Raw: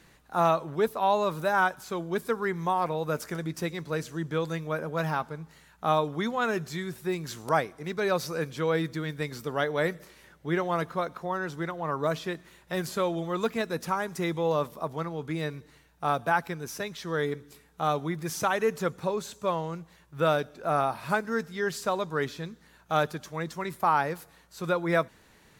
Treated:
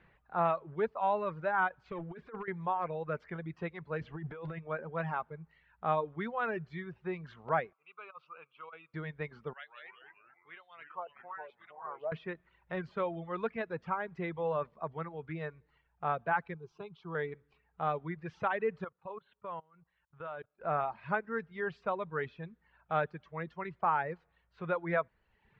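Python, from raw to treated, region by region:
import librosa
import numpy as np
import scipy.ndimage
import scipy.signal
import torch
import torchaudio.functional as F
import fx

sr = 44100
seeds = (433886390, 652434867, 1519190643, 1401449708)

y = fx.chain(x, sr, fx.over_compress(threshold_db=-32.0, ratio=-0.5),
    fx.clip_hard(threshold_db=-28.0), at=(1.85, 2.48))
y = fx.chain(y, sr, fx.law_mismatch(coded='mu'),
    fx.over_compress(threshold_db=-33.0, ratio=-1.0),
    fx.air_absorb(metres=83.0), at=(4.01, 4.59))
y = fx.chain(y, sr, fx.double_bandpass(hz=1800.0, octaves=1.1),
    fx.over_compress(threshold_db=-40.0, ratio=-0.5), at=(7.73, 8.94))
y = fx.chain(y, sr, fx.lowpass(hz=8300.0, slope=12),
    fx.wah_lfo(hz=1.1, low_hz=670.0, high_hz=3900.0, q=3.4),
    fx.echo_pitch(ms=139, semitones=-3, count=3, db_per_echo=-6.0), at=(9.53, 12.12))
y = fx.chain(y, sr, fx.high_shelf(hz=11000.0, db=-3.5),
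    fx.fixed_phaser(hz=370.0, stages=8), at=(16.54, 17.15))
y = fx.chain(y, sr, fx.low_shelf(hz=430.0, db=-2.0),
    fx.level_steps(step_db=16),
    fx.cheby_ripple(hz=4200.0, ripple_db=6), at=(18.84, 20.61))
y = scipy.signal.sosfilt(scipy.signal.butter(4, 2600.0, 'lowpass', fs=sr, output='sos'), y)
y = fx.dereverb_blind(y, sr, rt60_s=0.78)
y = fx.peak_eq(y, sr, hz=280.0, db=-9.5, octaves=0.43)
y = y * librosa.db_to_amplitude(-5.0)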